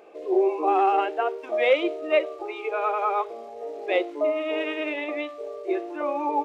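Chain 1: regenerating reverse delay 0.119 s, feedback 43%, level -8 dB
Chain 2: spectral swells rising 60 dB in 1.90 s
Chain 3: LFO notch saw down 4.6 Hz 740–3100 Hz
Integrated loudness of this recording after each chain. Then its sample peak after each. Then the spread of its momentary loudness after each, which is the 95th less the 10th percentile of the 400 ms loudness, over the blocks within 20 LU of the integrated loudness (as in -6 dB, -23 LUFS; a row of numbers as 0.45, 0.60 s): -25.0, -22.0, -26.5 LUFS; -8.5, -6.5, -10.5 dBFS; 11, 9, 11 LU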